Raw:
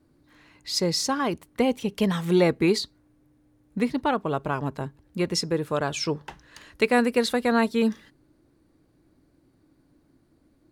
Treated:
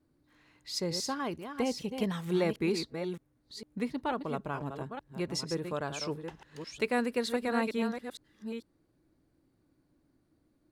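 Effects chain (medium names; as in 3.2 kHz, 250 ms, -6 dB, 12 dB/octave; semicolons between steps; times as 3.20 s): chunks repeated in reverse 454 ms, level -7.5 dB; trim -9 dB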